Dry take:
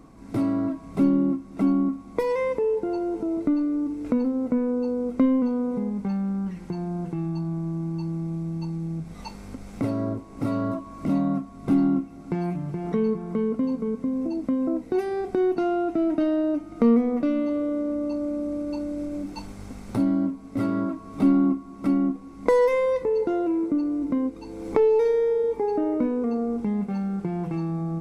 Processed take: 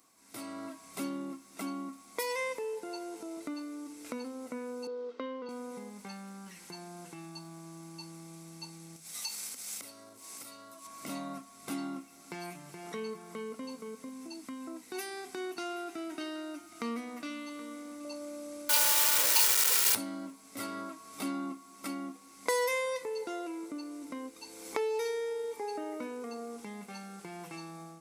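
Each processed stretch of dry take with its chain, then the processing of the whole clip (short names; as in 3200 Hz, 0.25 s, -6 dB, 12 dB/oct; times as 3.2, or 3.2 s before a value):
4.87–5.49 speaker cabinet 360–4100 Hz, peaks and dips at 450 Hz +8 dB, 730 Hz -7 dB, 2300 Hz -9 dB + mismatched tape noise reduction decoder only
8.96–10.87 high shelf 2600 Hz +10.5 dB + compressor, threshold -37 dBFS + notches 50/100/150 Hz
14.09–18.05 bell 550 Hz -12 dB 0.48 oct + echo 0.774 s -17.5 dB
18.69–19.95 minimum comb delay 2.1 ms + bell 1600 Hz +11 dB 2.9 oct + companded quantiser 2-bit
whole clip: differentiator; AGC gain up to 7.5 dB; gain +3 dB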